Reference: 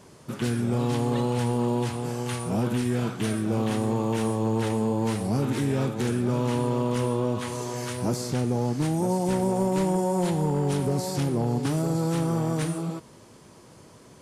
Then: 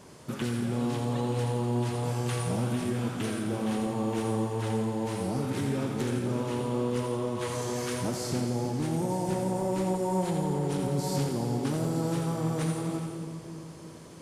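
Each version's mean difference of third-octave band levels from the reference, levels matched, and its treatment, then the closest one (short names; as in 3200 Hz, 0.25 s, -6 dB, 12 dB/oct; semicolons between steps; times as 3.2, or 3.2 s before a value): 3.0 dB: compressor 3:1, threshold -29 dBFS, peak gain reduction 6.5 dB; split-band echo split 560 Hz, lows 0.323 s, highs 85 ms, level -6.5 dB; non-linear reverb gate 0.46 s flat, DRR 7 dB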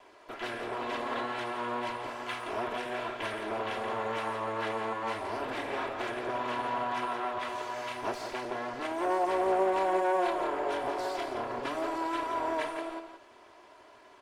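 9.0 dB: minimum comb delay 3 ms; three-band isolator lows -21 dB, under 450 Hz, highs -20 dB, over 3500 Hz; notch 1300 Hz, Q 25; on a send: echo 0.171 s -8 dB; on the sum: gain +2 dB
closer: first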